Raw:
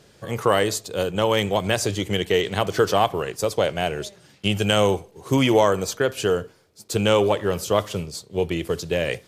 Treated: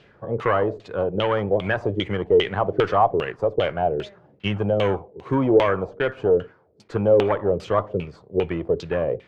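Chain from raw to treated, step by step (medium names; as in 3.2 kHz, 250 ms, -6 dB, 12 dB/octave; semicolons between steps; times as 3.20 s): valve stage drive 13 dB, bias 0.35; LFO low-pass saw down 2.5 Hz 380–3100 Hz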